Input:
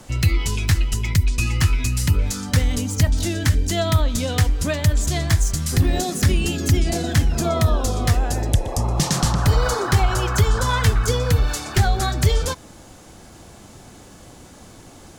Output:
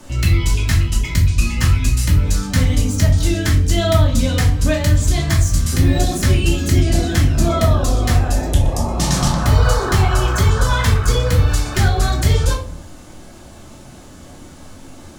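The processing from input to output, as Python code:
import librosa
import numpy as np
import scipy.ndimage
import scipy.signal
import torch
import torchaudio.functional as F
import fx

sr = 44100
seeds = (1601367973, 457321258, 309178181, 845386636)

y = fx.room_shoebox(x, sr, seeds[0], volume_m3=350.0, walls='furnished', distance_m=2.6)
y = y * 10.0 ** (-1.5 / 20.0)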